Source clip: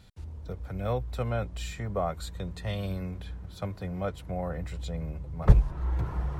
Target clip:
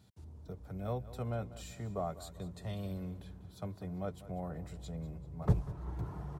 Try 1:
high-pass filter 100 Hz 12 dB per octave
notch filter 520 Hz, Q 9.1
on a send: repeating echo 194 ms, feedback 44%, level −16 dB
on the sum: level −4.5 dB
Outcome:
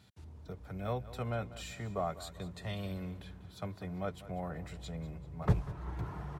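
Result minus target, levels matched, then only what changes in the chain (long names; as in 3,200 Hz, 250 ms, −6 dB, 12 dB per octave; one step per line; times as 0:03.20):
2,000 Hz band +7.0 dB
add after high-pass filter: parametric band 2,200 Hz −9 dB 2.1 octaves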